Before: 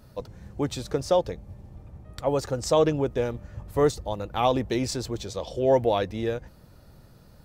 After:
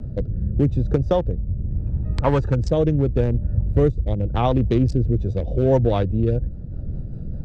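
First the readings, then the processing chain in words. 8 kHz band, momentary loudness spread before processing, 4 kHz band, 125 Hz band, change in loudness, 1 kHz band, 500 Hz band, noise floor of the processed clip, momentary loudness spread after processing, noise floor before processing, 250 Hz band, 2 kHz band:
under -10 dB, 18 LU, -5.0 dB, +14.0 dB, +5.0 dB, 0.0 dB, +2.0 dB, -31 dBFS, 9 LU, -53 dBFS, +7.5 dB, -0.5 dB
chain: local Wiener filter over 41 samples; RIAA curve playback; time-frequency box 1.70–2.70 s, 850–8600 Hz +9 dB; treble shelf 3 kHz +7.5 dB; compression 1.5:1, threshold -26 dBFS, peak gain reduction 5.5 dB; rotary cabinet horn 0.8 Hz, later 5 Hz, at 4.77 s; three bands compressed up and down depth 40%; trim +6.5 dB

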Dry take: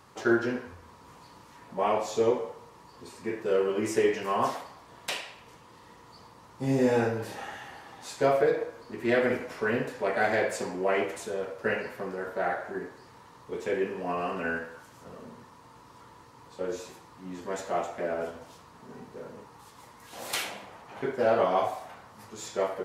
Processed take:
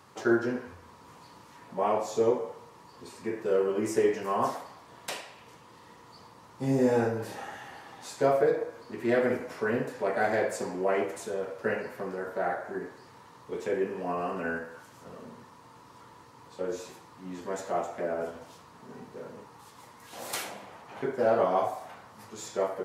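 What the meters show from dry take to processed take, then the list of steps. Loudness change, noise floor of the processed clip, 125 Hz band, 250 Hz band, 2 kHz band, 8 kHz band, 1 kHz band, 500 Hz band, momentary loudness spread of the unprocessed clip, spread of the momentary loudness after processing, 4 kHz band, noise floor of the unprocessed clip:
-0.5 dB, -54 dBFS, -0.5 dB, 0.0 dB, -3.0 dB, -1.0 dB, -1.0 dB, -0.5 dB, 21 LU, 21 LU, -4.5 dB, -53 dBFS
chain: high-pass 80 Hz; dynamic bell 2.9 kHz, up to -7 dB, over -47 dBFS, Q 0.93

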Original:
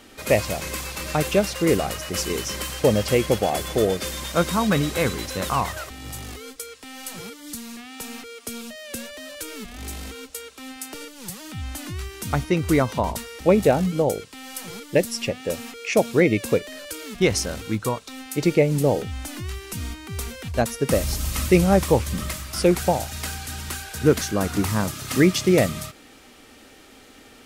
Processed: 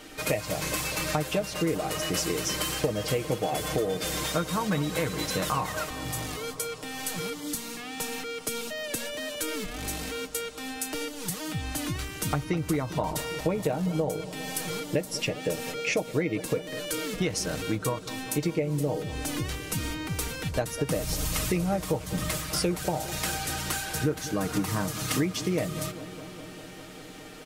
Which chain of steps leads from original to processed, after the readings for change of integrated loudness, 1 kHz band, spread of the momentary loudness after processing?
-7.0 dB, -5.0 dB, 6 LU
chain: comb 6.5 ms, depth 61%; compression 6:1, threshold -26 dBFS, peak gain reduction 18 dB; on a send: bucket-brigade echo 203 ms, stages 2048, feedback 82%, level -15 dB; on the sum: trim +1 dB

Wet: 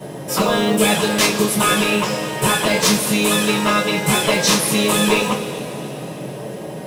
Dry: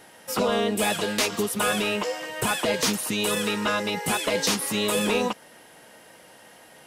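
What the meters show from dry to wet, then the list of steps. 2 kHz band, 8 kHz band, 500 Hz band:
+8.0 dB, +8.5 dB, +7.0 dB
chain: band noise 120–670 Hz -39 dBFS; short-mantissa float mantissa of 4-bit; two-slope reverb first 0.21 s, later 3.7 s, from -22 dB, DRR -9 dB; trim -1 dB

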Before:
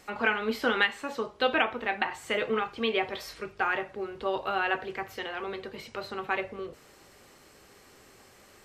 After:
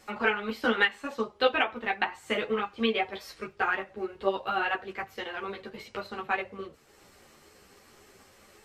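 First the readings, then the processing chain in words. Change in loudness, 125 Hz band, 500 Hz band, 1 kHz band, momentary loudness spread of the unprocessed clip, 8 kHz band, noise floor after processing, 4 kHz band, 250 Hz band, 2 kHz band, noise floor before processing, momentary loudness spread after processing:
0.0 dB, 0.0 dB, 0.0 dB, 0.0 dB, 12 LU, no reading, -59 dBFS, 0.0 dB, +1.0 dB, 0.0 dB, -56 dBFS, 14 LU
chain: transient shaper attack +3 dB, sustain -5 dB; three-phase chorus; trim +2 dB

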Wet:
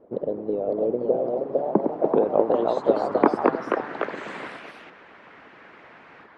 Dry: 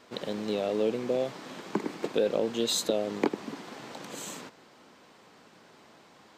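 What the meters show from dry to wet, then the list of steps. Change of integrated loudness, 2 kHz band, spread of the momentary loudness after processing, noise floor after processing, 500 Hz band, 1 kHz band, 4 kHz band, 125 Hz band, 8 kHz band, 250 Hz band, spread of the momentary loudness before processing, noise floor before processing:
+7.0 dB, +6.5 dB, 14 LU, -49 dBFS, +8.0 dB, +13.0 dB, under -10 dB, +4.5 dB, under -20 dB, +6.5 dB, 15 LU, -57 dBFS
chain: low-pass sweep 500 Hz -> 1.8 kHz, 1.07–4.14 s; harmonic-percussive split harmonic -15 dB; ever faster or slower copies 575 ms, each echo +2 st, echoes 3; trim +8 dB

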